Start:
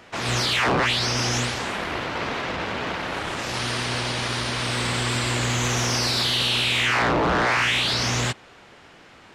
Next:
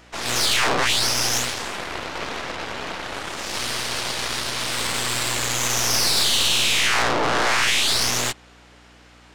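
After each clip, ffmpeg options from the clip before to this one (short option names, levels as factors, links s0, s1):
-af "aeval=exprs='val(0)+0.01*(sin(2*PI*60*n/s)+sin(2*PI*2*60*n/s)/2+sin(2*PI*3*60*n/s)/3+sin(2*PI*4*60*n/s)/4+sin(2*PI*5*60*n/s)/5)':c=same,bass=f=250:g=-10,treble=f=4000:g=6,aeval=exprs='0.282*(cos(1*acos(clip(val(0)/0.282,-1,1)))-cos(1*PI/2))+0.0708*(cos(4*acos(clip(val(0)/0.282,-1,1)))-cos(4*PI/2))+0.0112*(cos(7*acos(clip(val(0)/0.282,-1,1)))-cos(7*PI/2))':c=same"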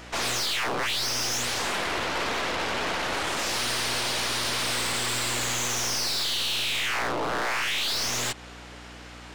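-af "acompressor=threshold=0.0794:ratio=6,asoftclip=type=tanh:threshold=0.0376,volume=2"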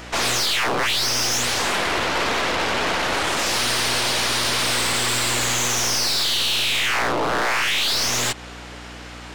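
-af "volume=2.11" -ar 48000 -c:a aac -b:a 192k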